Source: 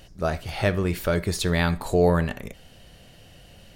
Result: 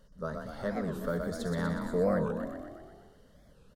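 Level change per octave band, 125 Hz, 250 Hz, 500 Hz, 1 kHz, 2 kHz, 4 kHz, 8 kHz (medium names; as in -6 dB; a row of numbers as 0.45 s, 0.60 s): -11.5 dB, -6.0 dB, -7.5 dB, -9.0 dB, -12.0 dB, -17.0 dB, -15.5 dB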